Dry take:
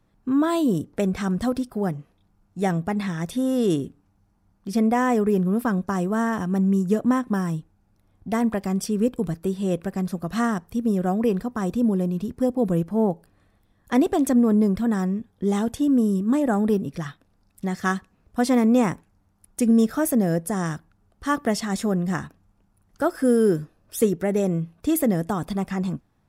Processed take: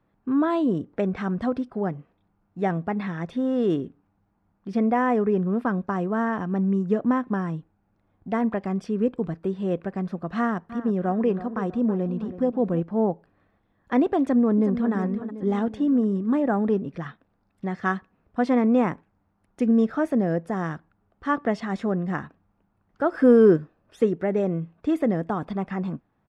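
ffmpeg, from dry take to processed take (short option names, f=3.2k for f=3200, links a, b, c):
-filter_complex "[0:a]asettb=1/sr,asplit=3[a][b][c];[a]atrim=end=10.374[d];[b]atrim=start=10.37:end=12.8,asetpts=PTS-STARTPTS,afade=t=in:d=0.004:c=qsin,afade=t=out:st=2.426:d=0.004:c=qsin,asplit=2[e][f];[f]adelay=324,lowpass=f=3.2k:p=1,volume=-13.5dB,asplit=2[g][h];[h]adelay=324,lowpass=f=3.2k:p=1,volume=0.46,asplit=2[i][j];[j]adelay=324,lowpass=f=3.2k:p=1,volume=0.46,asplit=2[k][l];[l]adelay=324,lowpass=f=3.2k:p=1,volume=0.46[m];[e][g][i][k][m]amix=inputs=5:normalize=0,atrim=end_sample=107163[n];[c]atrim=start=12.796[o];[d][n]acrossfade=d=0.004:c1=hsin:c2=qsin[p];[p][o]acrossfade=d=0.004:c1=qsin:c2=hsin,asplit=2[q][r];[r]afade=t=in:st=14.2:d=0.01,afade=t=out:st=14.93:d=0.01,aecho=0:1:370|740|1110|1480|1850|2220:0.298538|0.164196|0.0903078|0.0496693|0.0273181|0.015025[s];[q][s]amix=inputs=2:normalize=0,asplit=3[t][u][v];[t]afade=t=out:st=23.11:d=0.02[w];[u]acontrast=38,afade=t=in:st=23.11:d=0.02,afade=t=out:st=23.56:d=0.02[x];[v]afade=t=in:st=23.56:d=0.02[y];[w][x][y]amix=inputs=3:normalize=0,lowpass=2.3k,lowshelf=f=110:g=-11"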